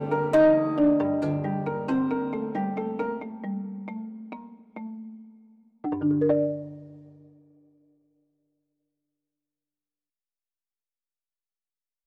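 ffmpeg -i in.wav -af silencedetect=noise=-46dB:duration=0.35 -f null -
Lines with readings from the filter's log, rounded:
silence_start: 5.30
silence_end: 5.84 | silence_duration: 0.54
silence_start: 7.28
silence_end: 12.06 | silence_duration: 4.78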